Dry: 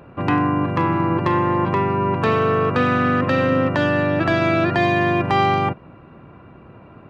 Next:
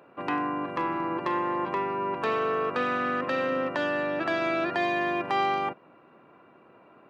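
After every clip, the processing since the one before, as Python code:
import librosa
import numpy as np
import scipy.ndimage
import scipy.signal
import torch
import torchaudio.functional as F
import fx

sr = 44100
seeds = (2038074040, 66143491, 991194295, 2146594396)

y = scipy.signal.sosfilt(scipy.signal.butter(2, 330.0, 'highpass', fs=sr, output='sos'), x)
y = F.gain(torch.from_numpy(y), -7.5).numpy()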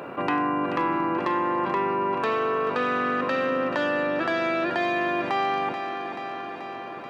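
y = fx.rider(x, sr, range_db=10, speed_s=0.5)
y = fx.echo_feedback(y, sr, ms=433, feedback_pct=56, wet_db=-14)
y = fx.env_flatten(y, sr, amount_pct=50)
y = F.gain(torch.from_numpy(y), 1.0).numpy()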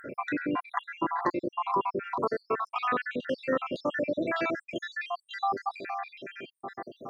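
y = fx.spec_dropout(x, sr, seeds[0], share_pct=75)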